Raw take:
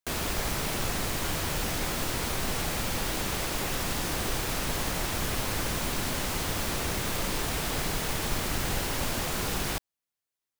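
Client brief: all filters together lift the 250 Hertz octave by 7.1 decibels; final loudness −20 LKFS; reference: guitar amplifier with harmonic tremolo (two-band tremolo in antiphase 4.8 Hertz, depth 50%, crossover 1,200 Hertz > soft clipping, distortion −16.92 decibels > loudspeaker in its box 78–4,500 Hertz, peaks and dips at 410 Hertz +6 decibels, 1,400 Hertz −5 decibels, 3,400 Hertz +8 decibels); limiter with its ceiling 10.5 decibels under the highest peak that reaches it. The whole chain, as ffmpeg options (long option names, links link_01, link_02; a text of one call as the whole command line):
ffmpeg -i in.wav -filter_complex "[0:a]equalizer=frequency=250:width_type=o:gain=8.5,alimiter=level_in=1dB:limit=-24dB:level=0:latency=1,volume=-1dB,acrossover=split=1200[link_01][link_02];[link_01]aeval=exprs='val(0)*(1-0.5/2+0.5/2*cos(2*PI*4.8*n/s))':channel_layout=same[link_03];[link_02]aeval=exprs='val(0)*(1-0.5/2-0.5/2*cos(2*PI*4.8*n/s))':channel_layout=same[link_04];[link_03][link_04]amix=inputs=2:normalize=0,asoftclip=threshold=-31.5dB,highpass=78,equalizer=frequency=410:width_type=q:width=4:gain=6,equalizer=frequency=1400:width_type=q:width=4:gain=-5,equalizer=frequency=3400:width_type=q:width=4:gain=8,lowpass=frequency=4500:width=0.5412,lowpass=frequency=4500:width=1.3066,volume=18.5dB" out.wav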